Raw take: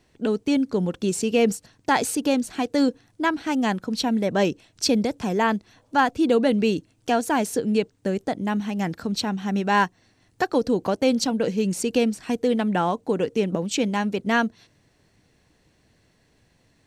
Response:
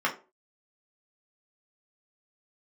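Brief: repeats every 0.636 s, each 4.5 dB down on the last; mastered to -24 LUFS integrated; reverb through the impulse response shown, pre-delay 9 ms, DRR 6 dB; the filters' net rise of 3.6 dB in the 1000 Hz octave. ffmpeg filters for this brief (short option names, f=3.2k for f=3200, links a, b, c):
-filter_complex "[0:a]equalizer=f=1k:t=o:g=4.5,aecho=1:1:636|1272|1908|2544|3180|3816|4452|5088|5724:0.596|0.357|0.214|0.129|0.0772|0.0463|0.0278|0.0167|0.01,asplit=2[a][b];[1:a]atrim=start_sample=2205,adelay=9[c];[b][c]afir=irnorm=-1:irlink=0,volume=-18dB[d];[a][d]amix=inputs=2:normalize=0,volume=-3.5dB"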